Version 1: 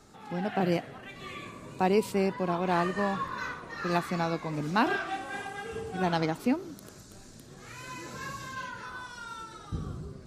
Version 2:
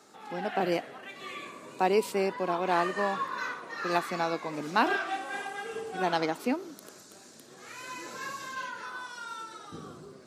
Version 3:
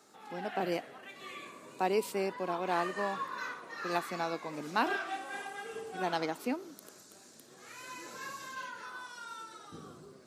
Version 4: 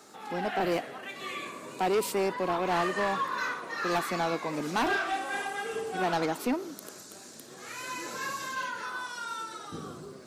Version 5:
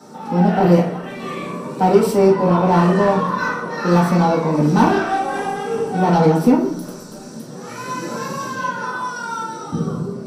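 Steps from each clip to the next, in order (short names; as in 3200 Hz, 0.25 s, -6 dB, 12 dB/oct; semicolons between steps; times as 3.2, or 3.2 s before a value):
HPF 310 Hz 12 dB/oct; gain +1.5 dB
high shelf 10000 Hz +6 dB; gain -5 dB
soft clip -30.5 dBFS, distortion -9 dB; gain +8.5 dB
reverb RT60 0.45 s, pre-delay 3 ms, DRR -7 dB; gain -4.5 dB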